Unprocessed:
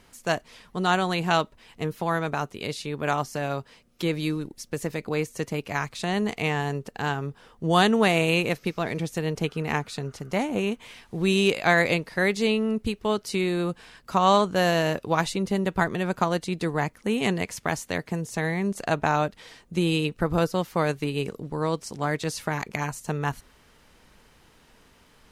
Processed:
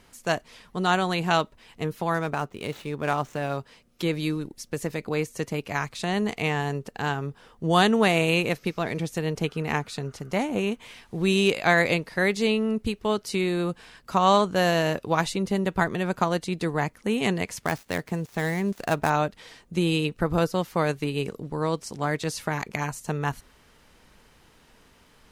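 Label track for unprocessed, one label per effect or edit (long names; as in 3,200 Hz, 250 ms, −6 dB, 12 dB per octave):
2.140000	3.570000	running median over 9 samples
17.610000	19.100000	gap after every zero crossing of 0.057 ms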